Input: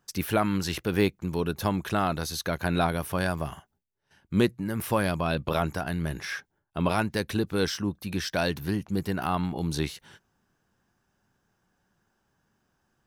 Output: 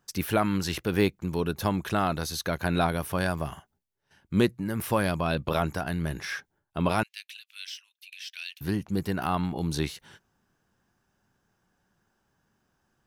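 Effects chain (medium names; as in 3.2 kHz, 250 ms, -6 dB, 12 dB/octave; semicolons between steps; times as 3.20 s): 7.03–8.61 s: ladder high-pass 2.4 kHz, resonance 60%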